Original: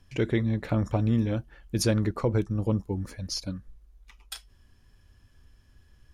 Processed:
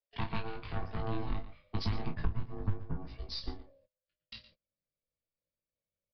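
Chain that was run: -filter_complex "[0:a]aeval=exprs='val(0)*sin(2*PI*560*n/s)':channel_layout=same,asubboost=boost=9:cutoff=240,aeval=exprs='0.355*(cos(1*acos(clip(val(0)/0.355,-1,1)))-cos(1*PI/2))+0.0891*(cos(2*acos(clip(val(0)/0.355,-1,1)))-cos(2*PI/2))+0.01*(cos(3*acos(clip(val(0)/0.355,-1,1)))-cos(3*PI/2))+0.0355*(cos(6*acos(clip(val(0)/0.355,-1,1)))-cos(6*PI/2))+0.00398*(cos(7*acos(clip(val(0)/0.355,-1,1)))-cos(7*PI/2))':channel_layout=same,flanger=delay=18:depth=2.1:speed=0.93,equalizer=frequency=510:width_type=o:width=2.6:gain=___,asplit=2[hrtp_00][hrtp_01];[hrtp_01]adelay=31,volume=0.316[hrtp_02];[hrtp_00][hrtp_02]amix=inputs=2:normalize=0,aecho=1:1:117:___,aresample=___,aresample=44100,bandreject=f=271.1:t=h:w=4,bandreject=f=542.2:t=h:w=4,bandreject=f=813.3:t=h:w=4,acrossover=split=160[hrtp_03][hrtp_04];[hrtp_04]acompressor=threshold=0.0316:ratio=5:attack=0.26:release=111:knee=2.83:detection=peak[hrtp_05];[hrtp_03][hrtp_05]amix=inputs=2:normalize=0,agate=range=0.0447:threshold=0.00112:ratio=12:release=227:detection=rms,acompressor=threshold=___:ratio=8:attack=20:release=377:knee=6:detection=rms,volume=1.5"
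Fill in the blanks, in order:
-15, 0.188, 11025, 0.0355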